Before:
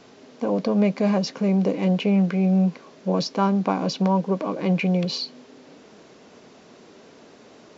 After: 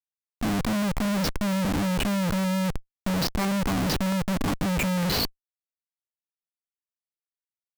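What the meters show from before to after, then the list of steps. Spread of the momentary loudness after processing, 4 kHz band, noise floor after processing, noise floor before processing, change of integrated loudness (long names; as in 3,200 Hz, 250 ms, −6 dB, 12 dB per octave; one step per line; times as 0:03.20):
4 LU, +1.5 dB, below −85 dBFS, −50 dBFS, −3.5 dB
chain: flat-topped bell 520 Hz −13 dB 1.1 octaves
comparator with hysteresis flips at −28.5 dBFS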